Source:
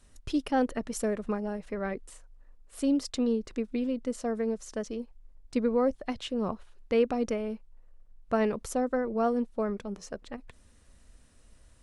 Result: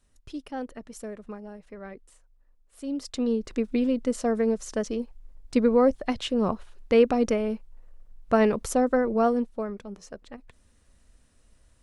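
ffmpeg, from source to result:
ffmpeg -i in.wav -af "volume=6dB,afade=type=in:start_time=2.84:duration=0.26:silence=0.446684,afade=type=in:start_time=3.1:duration=0.62:silence=0.446684,afade=type=out:start_time=9.12:duration=0.56:silence=0.375837" out.wav

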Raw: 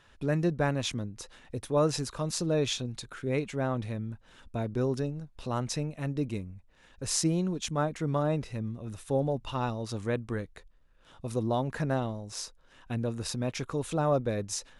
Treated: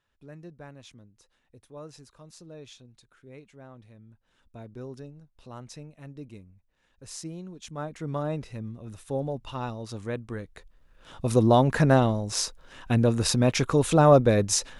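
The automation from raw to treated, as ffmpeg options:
ffmpeg -i in.wav -af "volume=10dB,afade=type=in:start_time=3.93:duration=0.7:silence=0.473151,afade=type=in:start_time=7.56:duration=0.6:silence=0.354813,afade=type=in:start_time=10.4:duration=0.94:silence=0.251189" out.wav

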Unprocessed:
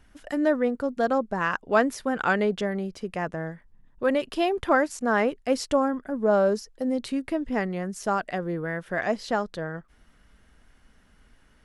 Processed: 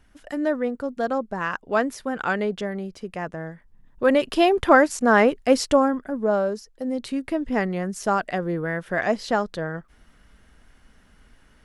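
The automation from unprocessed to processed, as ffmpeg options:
ffmpeg -i in.wav -af "volume=14dB,afade=type=in:start_time=3.51:duration=0.8:silence=0.421697,afade=type=out:start_time=5.52:duration=1.02:silence=0.298538,afade=type=in:start_time=6.54:duration=1.07:silence=0.421697" out.wav

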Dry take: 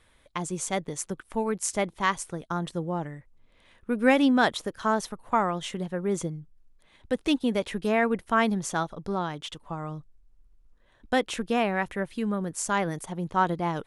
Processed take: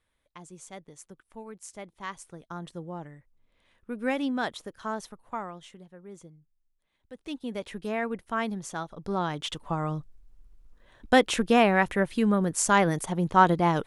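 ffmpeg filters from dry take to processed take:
ffmpeg -i in.wav -af "volume=15dB,afade=type=in:start_time=1.82:duration=0.84:silence=0.446684,afade=type=out:start_time=5.06:duration=0.79:silence=0.316228,afade=type=in:start_time=7.13:duration=0.54:silence=0.266073,afade=type=in:start_time=8.86:duration=0.72:silence=0.266073" out.wav

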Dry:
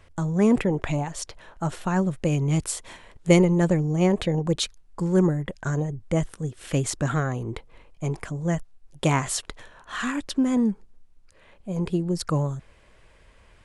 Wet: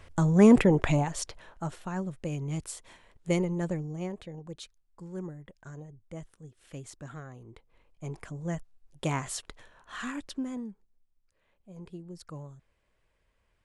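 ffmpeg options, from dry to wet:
ffmpeg -i in.wav -af "volume=12dB,afade=type=out:start_time=0.78:duration=1.01:silence=0.237137,afade=type=out:start_time=3.76:duration=0.43:silence=0.398107,afade=type=in:start_time=7.53:duration=0.8:silence=0.316228,afade=type=out:start_time=10.19:duration=0.49:silence=0.316228" out.wav

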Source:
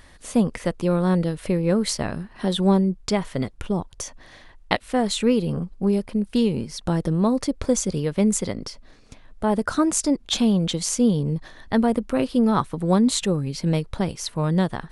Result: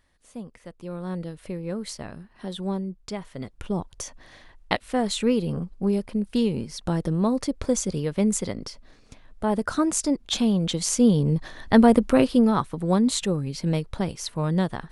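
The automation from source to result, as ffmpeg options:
ffmpeg -i in.wav -af "volume=5.5dB,afade=type=in:start_time=0.66:duration=0.54:silence=0.421697,afade=type=in:start_time=3.37:duration=0.4:silence=0.398107,afade=type=in:start_time=10.58:duration=1.48:silence=0.398107,afade=type=out:start_time=12.06:duration=0.5:silence=0.398107" out.wav

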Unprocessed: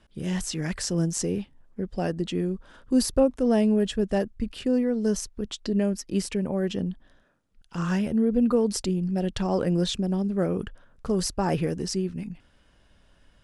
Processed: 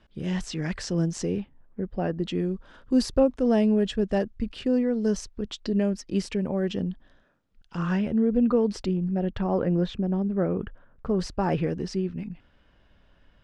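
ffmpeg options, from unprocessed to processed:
ffmpeg -i in.wav -af "asetnsamples=nb_out_samples=441:pad=0,asendcmd='1.4 lowpass f 2200;2.22 lowpass f 5400;7.77 lowpass f 3400;8.97 lowpass f 2000;11.2 lowpass f 3500',lowpass=4700" out.wav

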